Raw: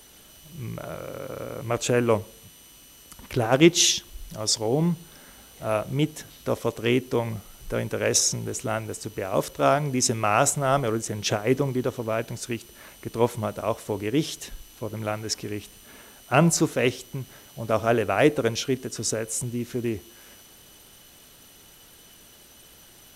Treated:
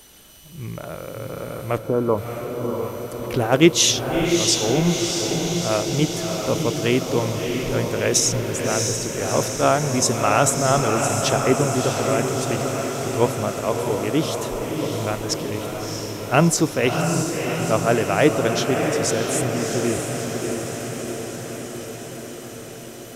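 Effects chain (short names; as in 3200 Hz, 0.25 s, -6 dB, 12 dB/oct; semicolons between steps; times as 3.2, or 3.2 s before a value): 1.78–2.18 rippled Chebyshev low-pass 1400 Hz, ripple 3 dB; diffused feedback echo 0.658 s, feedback 70%, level -4.5 dB; gain +2.5 dB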